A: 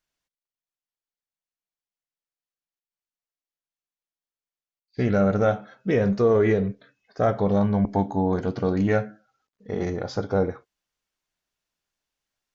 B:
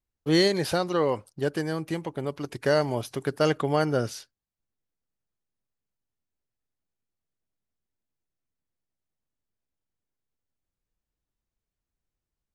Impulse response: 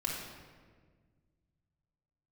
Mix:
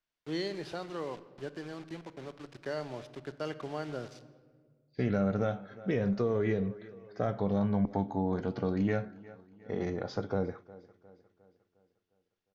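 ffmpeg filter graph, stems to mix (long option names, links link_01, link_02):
-filter_complex "[0:a]volume=-5dB,asplit=2[link_01][link_02];[link_02]volume=-23.5dB[link_03];[1:a]acrusher=bits=5:mix=0:aa=0.000001,volume=-14.5dB,asplit=2[link_04][link_05];[link_05]volume=-14dB[link_06];[2:a]atrim=start_sample=2205[link_07];[link_06][link_07]afir=irnorm=-1:irlink=0[link_08];[link_03]aecho=0:1:356|712|1068|1424|1780|2136|2492:1|0.48|0.23|0.111|0.0531|0.0255|0.0122[link_09];[link_01][link_04][link_08][link_09]amix=inputs=4:normalize=0,lowpass=4800,equalizer=frequency=68:width_type=o:width=1.5:gain=-5,acrossover=split=220|3000[link_10][link_11][link_12];[link_11]acompressor=threshold=-31dB:ratio=3[link_13];[link_10][link_13][link_12]amix=inputs=3:normalize=0"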